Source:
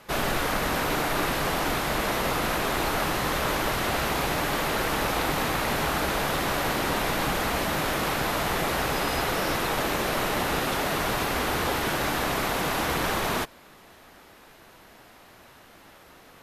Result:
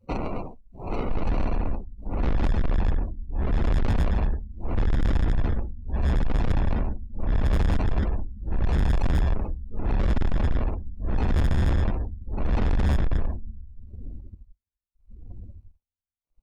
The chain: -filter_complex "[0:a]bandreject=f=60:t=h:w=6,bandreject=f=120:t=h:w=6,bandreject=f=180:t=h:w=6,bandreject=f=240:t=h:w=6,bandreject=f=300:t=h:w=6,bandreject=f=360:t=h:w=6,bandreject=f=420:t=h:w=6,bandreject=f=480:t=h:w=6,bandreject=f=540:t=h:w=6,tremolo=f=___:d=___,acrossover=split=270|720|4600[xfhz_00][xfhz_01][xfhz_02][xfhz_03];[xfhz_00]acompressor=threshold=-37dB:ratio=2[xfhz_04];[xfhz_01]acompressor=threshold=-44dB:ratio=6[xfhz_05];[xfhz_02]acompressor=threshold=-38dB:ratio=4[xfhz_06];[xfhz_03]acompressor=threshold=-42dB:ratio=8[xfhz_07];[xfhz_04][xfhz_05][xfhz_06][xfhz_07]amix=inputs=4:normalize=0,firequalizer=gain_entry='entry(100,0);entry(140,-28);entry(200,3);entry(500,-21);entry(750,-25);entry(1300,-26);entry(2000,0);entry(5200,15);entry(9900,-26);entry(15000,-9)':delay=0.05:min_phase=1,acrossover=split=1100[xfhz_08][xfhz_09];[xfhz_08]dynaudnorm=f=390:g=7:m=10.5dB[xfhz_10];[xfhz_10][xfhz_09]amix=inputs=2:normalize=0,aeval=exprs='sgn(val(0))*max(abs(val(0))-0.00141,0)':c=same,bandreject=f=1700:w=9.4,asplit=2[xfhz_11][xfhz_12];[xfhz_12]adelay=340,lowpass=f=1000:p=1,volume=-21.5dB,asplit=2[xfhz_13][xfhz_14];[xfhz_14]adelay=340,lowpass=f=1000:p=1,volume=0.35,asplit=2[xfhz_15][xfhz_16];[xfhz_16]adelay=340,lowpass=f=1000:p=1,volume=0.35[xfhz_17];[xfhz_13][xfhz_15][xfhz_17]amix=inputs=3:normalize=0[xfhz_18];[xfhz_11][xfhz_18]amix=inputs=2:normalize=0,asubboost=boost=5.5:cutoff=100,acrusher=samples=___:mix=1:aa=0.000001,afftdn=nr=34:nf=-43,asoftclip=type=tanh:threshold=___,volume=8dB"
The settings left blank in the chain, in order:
0.78, 0.99, 26, -26dB